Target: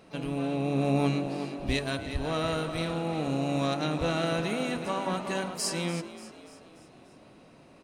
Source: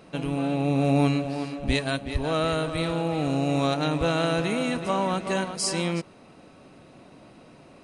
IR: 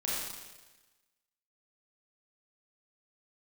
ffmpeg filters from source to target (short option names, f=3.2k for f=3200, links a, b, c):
-filter_complex "[0:a]bandreject=f=48.51:t=h:w=4,bandreject=f=97.02:t=h:w=4,bandreject=f=145.53:t=h:w=4,bandreject=f=194.04:t=h:w=4,bandreject=f=242.55:t=h:w=4,bandreject=f=291.06:t=h:w=4,bandreject=f=339.57:t=h:w=4,bandreject=f=388.08:t=h:w=4,bandreject=f=436.59:t=h:w=4,bandreject=f=485.1:t=h:w=4,bandreject=f=533.61:t=h:w=4,bandreject=f=582.12:t=h:w=4,bandreject=f=630.63:t=h:w=4,bandreject=f=679.14:t=h:w=4,bandreject=f=727.65:t=h:w=4,bandreject=f=776.16:t=h:w=4,bandreject=f=824.67:t=h:w=4,bandreject=f=873.18:t=h:w=4,bandreject=f=921.69:t=h:w=4,bandreject=f=970.2:t=h:w=4,bandreject=f=1.01871k:t=h:w=4,bandreject=f=1.06722k:t=h:w=4,bandreject=f=1.11573k:t=h:w=4,bandreject=f=1.16424k:t=h:w=4,bandreject=f=1.21275k:t=h:w=4,bandreject=f=1.26126k:t=h:w=4,bandreject=f=1.30977k:t=h:w=4,bandreject=f=1.35828k:t=h:w=4,bandreject=f=1.40679k:t=h:w=4,bandreject=f=1.4553k:t=h:w=4,bandreject=f=1.50381k:t=h:w=4,bandreject=f=1.55232k:t=h:w=4,bandreject=f=1.60083k:t=h:w=4,asplit=6[a][b][c][d][e][f];[b]adelay=291,afreqshift=50,volume=-15dB[g];[c]adelay=582,afreqshift=100,volume=-20.7dB[h];[d]adelay=873,afreqshift=150,volume=-26.4dB[i];[e]adelay=1164,afreqshift=200,volume=-32dB[j];[f]adelay=1455,afreqshift=250,volume=-37.7dB[k];[a][g][h][i][j][k]amix=inputs=6:normalize=0,asplit=2[l][m];[m]asetrate=66075,aresample=44100,atempo=0.66742,volume=-16dB[n];[l][n]amix=inputs=2:normalize=0,volume=-4dB"